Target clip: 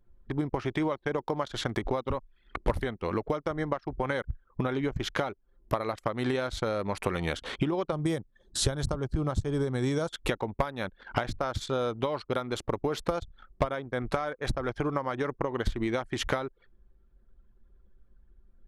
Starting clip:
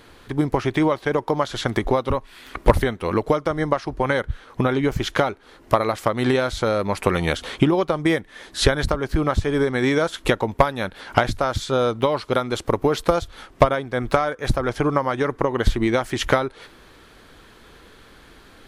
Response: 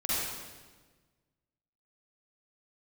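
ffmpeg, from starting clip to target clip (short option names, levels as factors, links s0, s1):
-filter_complex "[0:a]asettb=1/sr,asplit=3[s0][s1][s2];[s0]atrim=end=7.924[s3];[s1]atrim=start=7.92:end=10.09,asetpts=PTS-STARTPTS,afade=t=in:d=0.004:c=qsin,afade=t=out:st=2.166:d=0.004:c=qsin,equalizer=f=125:t=o:w=1:g=8,equalizer=f=2000:t=o:w=1:g=-8,equalizer=f=8000:t=o:w=1:g=8[s4];[s2]atrim=start=10.086[s5];[s3][s4]acrossfade=d=0.004:c1=hsin:c2=qsin[s6];[s6][s5]acrossfade=d=0.004:c1=qsin:c2=hsin,anlmdn=10,acompressor=threshold=0.02:ratio=2"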